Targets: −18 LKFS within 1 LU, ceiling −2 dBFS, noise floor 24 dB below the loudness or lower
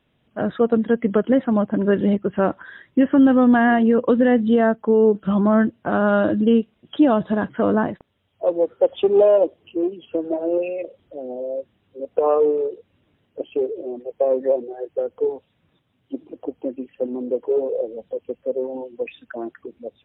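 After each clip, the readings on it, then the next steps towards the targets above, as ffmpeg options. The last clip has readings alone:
integrated loudness −20.0 LKFS; sample peak −6.5 dBFS; target loudness −18.0 LKFS
→ -af "volume=2dB"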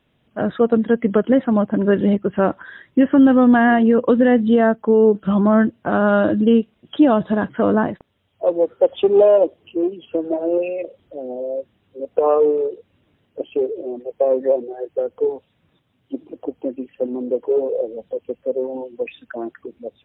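integrated loudness −18.0 LKFS; sample peak −4.5 dBFS; background noise floor −65 dBFS

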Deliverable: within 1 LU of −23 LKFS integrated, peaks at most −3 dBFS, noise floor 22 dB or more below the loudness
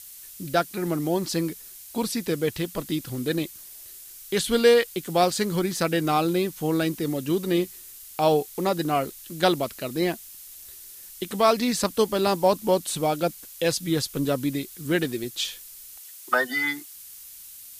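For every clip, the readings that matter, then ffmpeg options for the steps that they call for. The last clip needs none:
background noise floor −44 dBFS; target noise floor −47 dBFS; integrated loudness −25.0 LKFS; sample peak −7.5 dBFS; target loudness −23.0 LKFS
→ -af "afftdn=noise_reduction=6:noise_floor=-44"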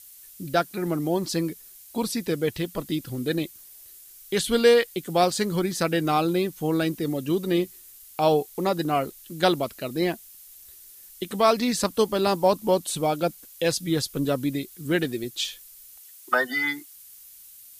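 background noise floor −48 dBFS; integrated loudness −25.0 LKFS; sample peak −7.5 dBFS; target loudness −23.0 LKFS
→ -af "volume=2dB"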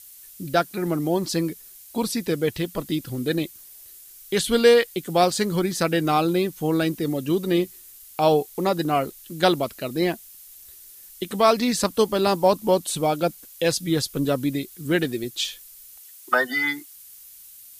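integrated loudness −23.0 LKFS; sample peak −5.5 dBFS; background noise floor −46 dBFS

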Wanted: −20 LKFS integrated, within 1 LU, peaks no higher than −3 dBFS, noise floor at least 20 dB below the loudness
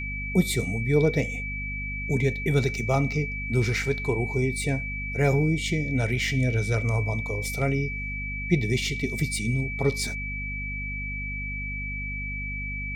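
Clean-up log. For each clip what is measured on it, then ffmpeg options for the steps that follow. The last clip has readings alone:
mains hum 50 Hz; hum harmonics up to 250 Hz; level of the hum −32 dBFS; interfering tone 2,300 Hz; level of the tone −32 dBFS; integrated loudness −26.5 LKFS; sample peak −9.0 dBFS; target loudness −20.0 LKFS
→ -af "bandreject=frequency=50:width_type=h:width=6,bandreject=frequency=100:width_type=h:width=6,bandreject=frequency=150:width_type=h:width=6,bandreject=frequency=200:width_type=h:width=6,bandreject=frequency=250:width_type=h:width=6"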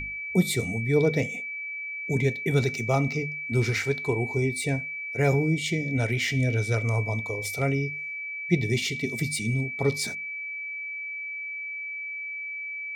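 mains hum none found; interfering tone 2,300 Hz; level of the tone −32 dBFS
→ -af "bandreject=frequency=2300:width=30"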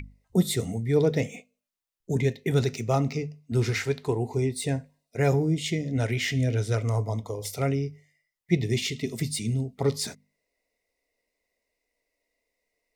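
interfering tone none found; integrated loudness −27.5 LKFS; sample peak −9.5 dBFS; target loudness −20.0 LKFS
→ -af "volume=7.5dB,alimiter=limit=-3dB:level=0:latency=1"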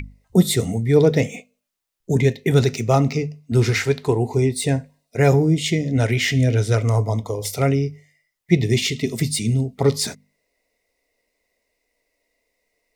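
integrated loudness −20.0 LKFS; sample peak −3.0 dBFS; background noise floor −76 dBFS

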